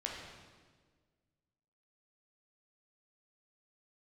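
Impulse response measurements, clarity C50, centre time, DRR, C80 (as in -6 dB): 1.0 dB, 72 ms, -2.0 dB, 3.0 dB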